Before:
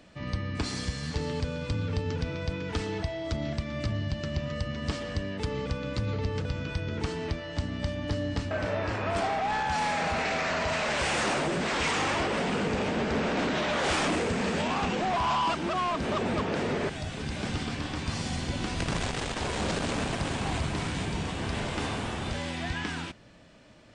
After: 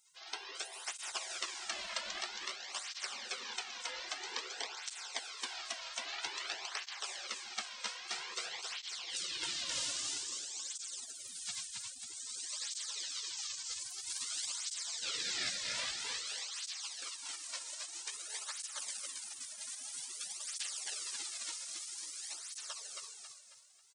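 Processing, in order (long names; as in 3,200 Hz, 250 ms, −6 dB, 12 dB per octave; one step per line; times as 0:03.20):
gate on every frequency bin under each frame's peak −30 dB weak
repeating echo 271 ms, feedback 40%, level −3 dB
through-zero flanger with one copy inverted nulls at 0.51 Hz, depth 2.7 ms
level +10.5 dB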